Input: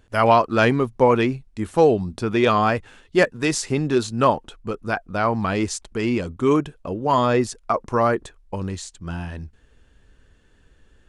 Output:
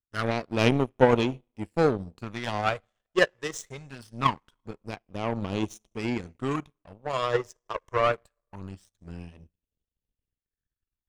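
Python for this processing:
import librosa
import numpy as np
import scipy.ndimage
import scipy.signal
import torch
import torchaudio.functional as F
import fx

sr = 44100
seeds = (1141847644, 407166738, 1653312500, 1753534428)

p1 = 10.0 ** (-16.0 / 20.0) * np.tanh(x / 10.0 ** (-16.0 / 20.0))
p2 = x + (p1 * 10.0 ** (-6.0 / 20.0))
p3 = fx.phaser_stages(p2, sr, stages=12, low_hz=230.0, high_hz=1700.0, hz=0.23, feedback_pct=20)
p4 = fx.rev_double_slope(p3, sr, seeds[0], early_s=0.64, late_s=2.6, knee_db=-15, drr_db=17.5)
p5 = fx.power_curve(p4, sr, exponent=2.0)
y = p5 * 10.0 ** (1.0 / 20.0)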